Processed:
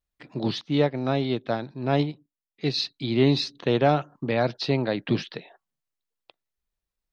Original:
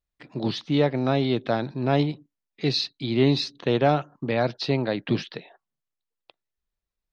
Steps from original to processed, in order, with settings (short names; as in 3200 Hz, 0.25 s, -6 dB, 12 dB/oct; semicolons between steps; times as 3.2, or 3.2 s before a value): 0.61–2.78 upward expander 1.5:1, over -34 dBFS